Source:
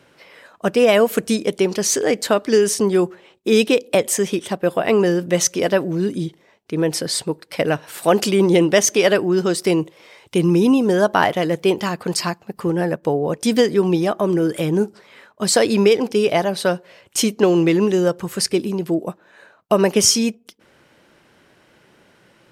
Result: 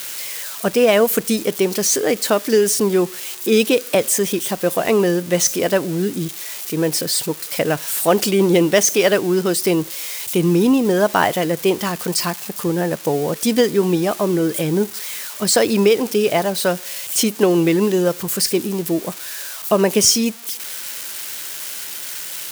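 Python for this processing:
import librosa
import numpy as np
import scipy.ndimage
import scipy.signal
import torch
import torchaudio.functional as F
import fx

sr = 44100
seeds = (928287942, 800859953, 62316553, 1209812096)

y = x + 0.5 * 10.0 ** (-18.5 / 20.0) * np.diff(np.sign(x), prepend=np.sign(x[:1]))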